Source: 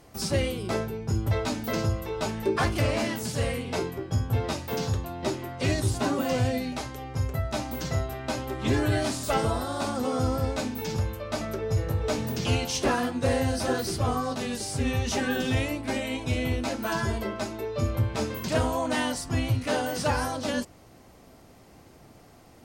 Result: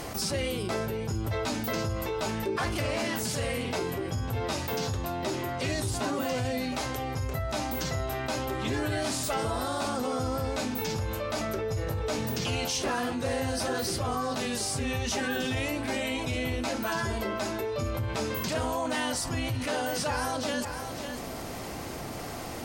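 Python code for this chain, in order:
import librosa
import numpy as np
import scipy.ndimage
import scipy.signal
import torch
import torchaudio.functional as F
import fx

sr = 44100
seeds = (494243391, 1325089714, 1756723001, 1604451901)

y = fx.low_shelf(x, sr, hz=410.0, db=-5.0)
y = y + 10.0 ** (-21.0 / 20.0) * np.pad(y, (int(550 * sr / 1000.0), 0))[:len(y)]
y = fx.env_flatten(y, sr, amount_pct=70)
y = y * 10.0 ** (-4.5 / 20.0)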